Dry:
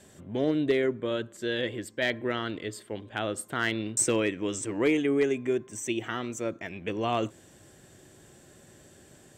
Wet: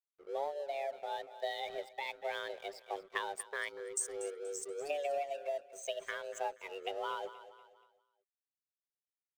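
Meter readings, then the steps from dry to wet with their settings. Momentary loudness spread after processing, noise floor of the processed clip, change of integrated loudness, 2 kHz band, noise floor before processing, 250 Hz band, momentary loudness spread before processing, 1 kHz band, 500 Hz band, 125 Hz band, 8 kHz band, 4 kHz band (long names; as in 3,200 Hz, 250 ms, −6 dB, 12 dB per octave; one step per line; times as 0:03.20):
6 LU, below −85 dBFS, −10.5 dB, −9.5 dB, −56 dBFS, −27.5 dB, 9 LU, −3.0 dB, −9.5 dB, below −35 dB, −9.5 dB, −9.0 dB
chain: spectral dynamics exaggerated over time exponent 1.5
low-pass that shuts in the quiet parts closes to 2,800 Hz, open at −29 dBFS
gain on a spectral selection 0:03.69–0:04.91, 220–4,100 Hz −26 dB
downward compressor 6 to 1, threshold −38 dBFS, peak gain reduction 15 dB
frequency shifter +280 Hz
dead-zone distortion −57.5 dBFS
on a send: repeating echo 239 ms, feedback 43%, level −16 dB
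on the sum: amplitude modulation by smooth noise, depth 65%
level +6.5 dB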